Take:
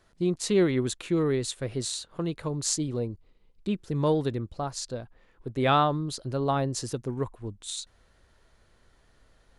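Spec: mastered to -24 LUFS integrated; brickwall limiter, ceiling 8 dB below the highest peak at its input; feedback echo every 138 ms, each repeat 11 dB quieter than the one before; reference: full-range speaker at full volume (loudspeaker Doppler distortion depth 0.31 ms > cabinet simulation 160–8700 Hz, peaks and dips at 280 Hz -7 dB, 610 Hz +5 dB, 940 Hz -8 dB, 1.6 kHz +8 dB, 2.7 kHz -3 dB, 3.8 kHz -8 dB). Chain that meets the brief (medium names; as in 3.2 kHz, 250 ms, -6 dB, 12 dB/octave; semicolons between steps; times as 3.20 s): peak limiter -19 dBFS; feedback delay 138 ms, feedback 28%, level -11 dB; loudspeaker Doppler distortion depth 0.31 ms; cabinet simulation 160–8700 Hz, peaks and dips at 280 Hz -7 dB, 610 Hz +5 dB, 940 Hz -8 dB, 1.6 kHz +8 dB, 2.7 kHz -3 dB, 3.8 kHz -8 dB; trim +8 dB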